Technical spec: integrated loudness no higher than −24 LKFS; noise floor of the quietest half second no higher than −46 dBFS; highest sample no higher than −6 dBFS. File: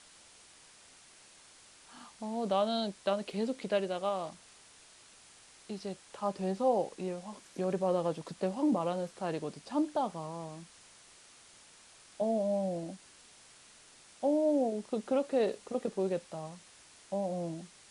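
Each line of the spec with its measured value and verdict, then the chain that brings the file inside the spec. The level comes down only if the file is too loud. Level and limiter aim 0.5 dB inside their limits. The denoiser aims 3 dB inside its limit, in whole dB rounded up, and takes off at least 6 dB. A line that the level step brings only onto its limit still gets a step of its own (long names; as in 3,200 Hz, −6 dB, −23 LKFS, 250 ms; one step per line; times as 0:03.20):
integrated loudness −34.0 LKFS: in spec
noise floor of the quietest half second −58 dBFS: in spec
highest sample −17.0 dBFS: in spec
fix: no processing needed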